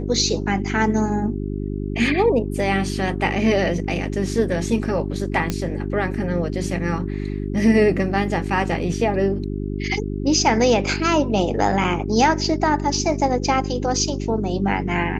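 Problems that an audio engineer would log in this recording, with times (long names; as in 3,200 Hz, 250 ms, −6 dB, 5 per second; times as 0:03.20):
mains hum 50 Hz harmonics 8 −26 dBFS
0:05.50: click −8 dBFS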